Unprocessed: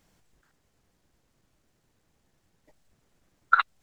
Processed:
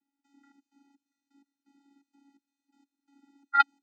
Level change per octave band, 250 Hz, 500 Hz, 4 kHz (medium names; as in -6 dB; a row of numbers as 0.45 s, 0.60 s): +10.5 dB, under -10 dB, -0.5 dB